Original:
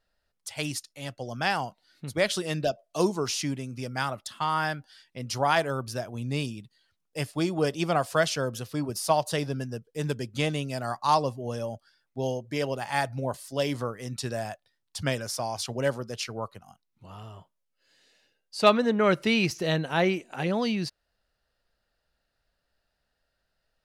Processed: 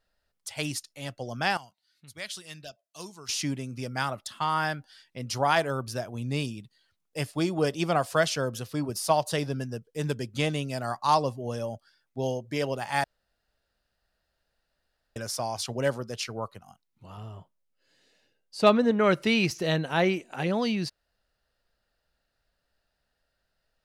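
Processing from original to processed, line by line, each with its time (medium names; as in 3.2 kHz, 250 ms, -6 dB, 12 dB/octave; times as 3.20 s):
1.57–3.29 s: amplifier tone stack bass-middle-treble 5-5-5
13.04–15.16 s: room tone
17.17–18.91 s: tilt shelf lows +3.5 dB, about 650 Hz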